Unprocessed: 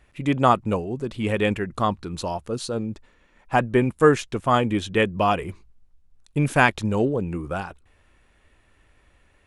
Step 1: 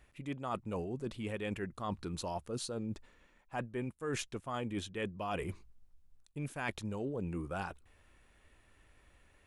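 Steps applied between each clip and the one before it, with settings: treble shelf 8.5 kHz +6 dB; reverse; compression 12:1, threshold -29 dBFS, peak gain reduction 19.5 dB; reverse; trim -5.5 dB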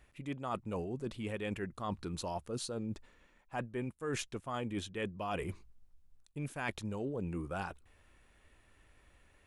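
no audible change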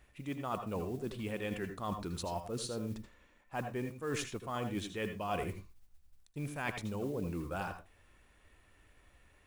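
modulation noise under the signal 25 dB; reverberation RT60 0.20 s, pre-delay 75 ms, DRR 7 dB

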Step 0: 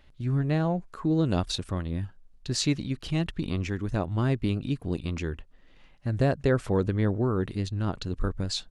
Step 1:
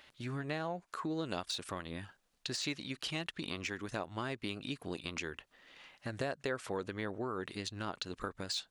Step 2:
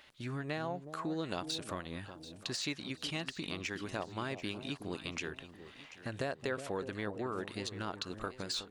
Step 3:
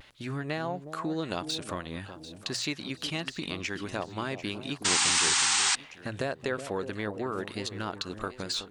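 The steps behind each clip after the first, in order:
de-esser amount 80%; high-pass 1.1 kHz 6 dB/octave; compression 2.5:1, threshold -46 dBFS, peak gain reduction 13 dB; trim +7.5 dB
echo whose repeats swap between lows and highs 368 ms, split 830 Hz, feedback 58%, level -9.5 dB
painted sound noise, 4.84–5.76 s, 740–9000 Hz -30 dBFS; vibrato 0.44 Hz 21 cents; hum notches 60/120 Hz; trim +5 dB

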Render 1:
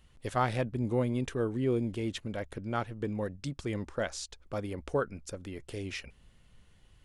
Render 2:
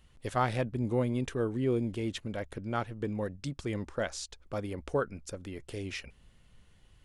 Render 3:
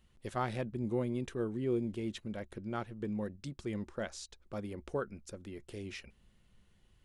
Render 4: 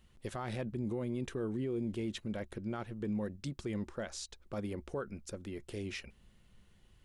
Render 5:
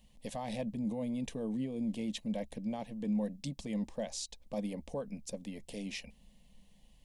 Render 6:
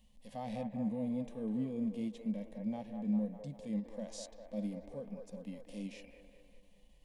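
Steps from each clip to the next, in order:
no audible change
small resonant body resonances 210/360/3900 Hz, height 7 dB, ringing for 90 ms; trim -6.5 dB
peak limiter -32 dBFS, peak gain reduction 11 dB; trim +3 dB
static phaser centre 370 Hz, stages 6; trim +4 dB
feedback echo behind a band-pass 200 ms, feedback 59%, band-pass 860 Hz, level -4.5 dB; harmonic-percussive split percussive -18 dB; endings held to a fixed fall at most 270 dB/s

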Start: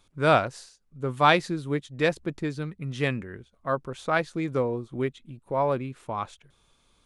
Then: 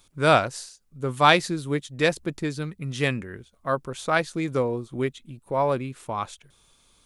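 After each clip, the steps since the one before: treble shelf 4.8 kHz +10.5 dB; trim +1.5 dB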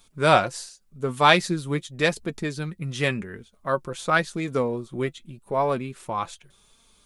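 flange 0.88 Hz, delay 4.3 ms, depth 1.7 ms, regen +49%; trim +5 dB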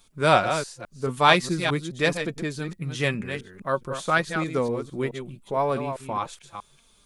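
chunks repeated in reverse 213 ms, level -8 dB; trim -1 dB

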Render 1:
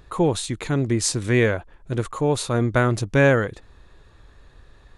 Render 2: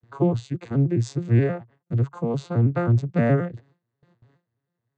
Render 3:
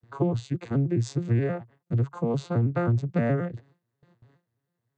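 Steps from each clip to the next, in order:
vocoder on a broken chord minor triad, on A#2, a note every 106 ms; gate with hold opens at -48 dBFS
compression, threshold -20 dBFS, peak gain reduction 7 dB

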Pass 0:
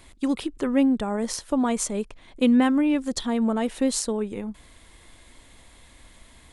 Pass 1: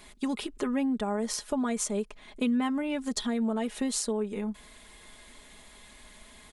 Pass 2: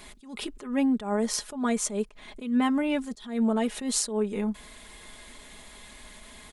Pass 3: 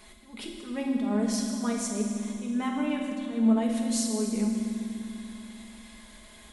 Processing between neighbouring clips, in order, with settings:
bass shelf 150 Hz -7.5 dB; comb 4.8 ms, depth 61%; compression 2.5:1, threshold -29 dBFS, peak gain reduction 9.5 dB
attacks held to a fixed rise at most 120 dB/s; trim +4.5 dB
reverberation RT60 2.6 s, pre-delay 5 ms, DRR 0 dB; trim -6 dB

